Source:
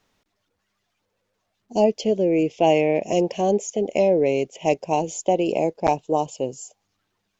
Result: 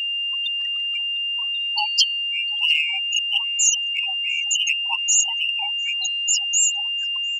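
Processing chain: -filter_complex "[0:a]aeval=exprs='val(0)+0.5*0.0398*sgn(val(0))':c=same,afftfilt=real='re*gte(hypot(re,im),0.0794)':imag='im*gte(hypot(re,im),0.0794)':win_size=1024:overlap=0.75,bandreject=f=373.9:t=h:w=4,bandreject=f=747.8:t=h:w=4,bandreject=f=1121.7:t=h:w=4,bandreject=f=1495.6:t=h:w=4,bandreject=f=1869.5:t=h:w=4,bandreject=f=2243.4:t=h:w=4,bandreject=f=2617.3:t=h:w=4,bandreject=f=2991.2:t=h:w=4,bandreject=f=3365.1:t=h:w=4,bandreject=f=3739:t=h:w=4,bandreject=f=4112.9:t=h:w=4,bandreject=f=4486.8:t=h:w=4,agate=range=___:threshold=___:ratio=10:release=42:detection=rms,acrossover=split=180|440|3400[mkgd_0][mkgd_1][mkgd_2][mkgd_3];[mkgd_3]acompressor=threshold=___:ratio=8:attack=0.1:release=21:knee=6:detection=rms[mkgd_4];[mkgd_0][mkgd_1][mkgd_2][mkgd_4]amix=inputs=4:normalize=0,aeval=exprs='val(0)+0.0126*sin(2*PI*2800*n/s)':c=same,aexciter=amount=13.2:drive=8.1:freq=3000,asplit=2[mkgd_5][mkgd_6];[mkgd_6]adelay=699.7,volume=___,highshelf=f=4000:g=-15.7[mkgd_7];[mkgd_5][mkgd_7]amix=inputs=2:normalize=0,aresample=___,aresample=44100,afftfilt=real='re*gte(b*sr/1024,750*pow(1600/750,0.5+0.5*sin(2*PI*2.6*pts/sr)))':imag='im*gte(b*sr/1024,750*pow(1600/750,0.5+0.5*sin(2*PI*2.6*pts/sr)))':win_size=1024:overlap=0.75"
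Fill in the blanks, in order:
-13dB, -43dB, -45dB, -20dB, 32000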